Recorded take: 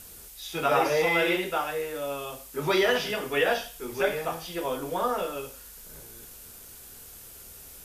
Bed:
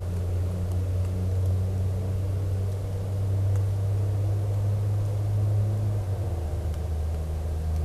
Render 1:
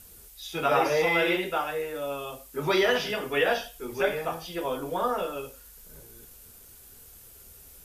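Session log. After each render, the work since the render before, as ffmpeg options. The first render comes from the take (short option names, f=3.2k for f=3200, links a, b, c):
-af "afftdn=nr=6:nf=-47"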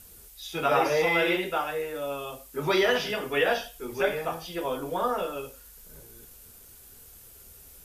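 -af anull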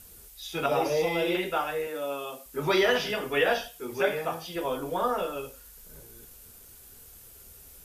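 -filter_complex "[0:a]asettb=1/sr,asplit=3[a][b][c];[a]atrim=end=0.664[d];[b]atrim=start=0.66:end=1.35,asetpts=PTS-STARTPTS,afade=t=in:d=0.004:c=qsin,afade=t=out:st=0.686:d=0.004:c=qsin,equalizer=f=1.6k:t=o:w=1.2:g=-12.5[e];[c]atrim=start=1.346[f];[d][e]acrossfade=d=0.004:c1=hsin:c2=qsin[g];[g][f]acrossfade=d=0.004:c1=qsin:c2=hsin,asettb=1/sr,asplit=3[h][i][j];[h]atrim=end=1.874[k];[i]atrim=start=1.87:end=2.46,asetpts=PTS-STARTPTS,afade=t=in:d=0.004:c=qsin,afade=t=out:st=0.586:d=0.004:c=qsin,highpass=f=170:w=0.5412,highpass=f=170:w=1.3066[l];[j]atrim=start=2.456[m];[k][l]acrossfade=d=0.004:c1=hsin:c2=qsin[n];[n][m]acrossfade=d=0.004:c1=qsin:c2=hsin,asettb=1/sr,asplit=3[o][p][q];[o]atrim=end=3.684[r];[p]atrim=start=3.68:end=4.56,asetpts=PTS-STARTPTS,afade=t=in:d=0.004:c=qsin,afade=t=out:st=0.876:d=0.004:c=qsin,highpass=76[s];[q]atrim=start=4.556[t];[r][s]acrossfade=d=0.004:c1=hsin:c2=qsin[u];[u][t]acrossfade=d=0.004:c1=qsin:c2=hsin"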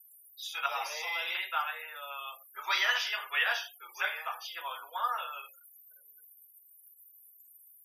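-af "afftfilt=real='re*gte(hypot(re,im),0.00562)':imag='im*gte(hypot(re,im),0.00562)':win_size=1024:overlap=0.75,highpass=f=990:w=0.5412,highpass=f=990:w=1.3066"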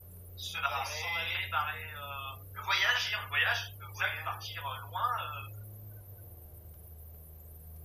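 -filter_complex "[1:a]volume=-22.5dB[a];[0:a][a]amix=inputs=2:normalize=0"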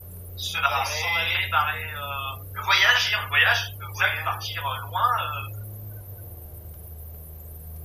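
-af "volume=10dB"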